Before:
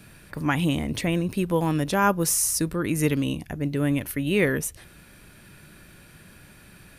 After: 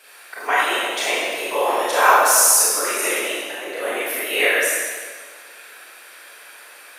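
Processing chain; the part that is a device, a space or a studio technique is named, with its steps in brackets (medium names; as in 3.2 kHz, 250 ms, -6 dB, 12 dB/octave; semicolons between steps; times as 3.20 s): whispering ghost (whisper effect; high-pass 570 Hz 24 dB/octave; reverberation RT60 1.7 s, pre-delay 24 ms, DRR -7.5 dB); trim +3 dB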